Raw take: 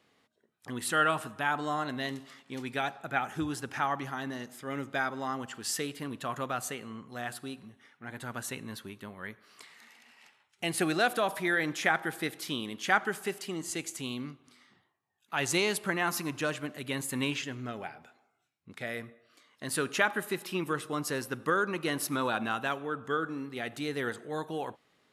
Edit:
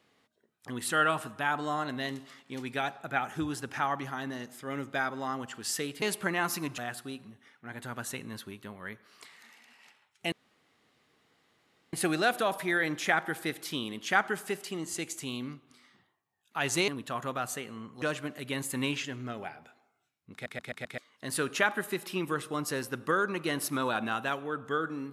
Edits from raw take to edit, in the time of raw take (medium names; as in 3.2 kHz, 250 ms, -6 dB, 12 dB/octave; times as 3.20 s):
6.02–7.16 s: swap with 15.65–16.41 s
10.70 s: insert room tone 1.61 s
18.72 s: stutter in place 0.13 s, 5 plays